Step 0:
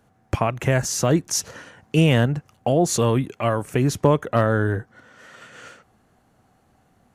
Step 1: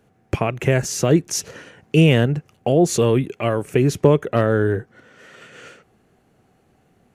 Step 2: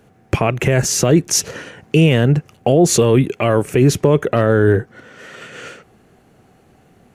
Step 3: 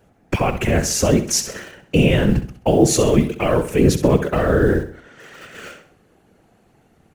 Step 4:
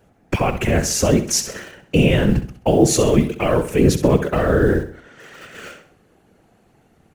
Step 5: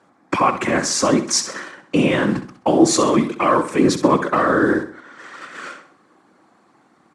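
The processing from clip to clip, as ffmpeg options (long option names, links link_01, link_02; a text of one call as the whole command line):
ffmpeg -i in.wav -af "equalizer=frequency=160:width_type=o:width=0.67:gain=4,equalizer=frequency=400:width_type=o:width=0.67:gain=8,equalizer=frequency=1000:width_type=o:width=0.67:gain=-3,equalizer=frequency=2500:width_type=o:width=0.67:gain=5,volume=-1dB" out.wav
ffmpeg -i in.wav -af "alimiter=limit=-11.5dB:level=0:latency=1:release=20,volume=8dB" out.wav
ffmpeg -i in.wav -filter_complex "[0:a]asplit=2[link_01][link_02];[link_02]acrusher=bits=4:mix=0:aa=0.000001,volume=-10.5dB[link_03];[link_01][link_03]amix=inputs=2:normalize=0,afftfilt=real='hypot(re,im)*cos(2*PI*random(0))':imag='hypot(re,im)*sin(2*PI*random(1))':win_size=512:overlap=0.75,aecho=1:1:65|130|195|260:0.266|0.109|0.0447|0.0183,volume=1dB" out.wav
ffmpeg -i in.wav -af anull out.wav
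ffmpeg -i in.wav -af "highpass=290,equalizer=frequency=300:width_type=q:width=4:gain=4,equalizer=frequency=440:width_type=q:width=4:gain=-9,equalizer=frequency=660:width_type=q:width=4:gain=-5,equalizer=frequency=1100:width_type=q:width=4:gain=10,equalizer=frequency=2800:width_type=q:width=4:gain=-9,equalizer=frequency=6400:width_type=q:width=4:gain=-5,lowpass=frequency=8400:width=0.5412,lowpass=frequency=8400:width=1.3066,volume=4dB" out.wav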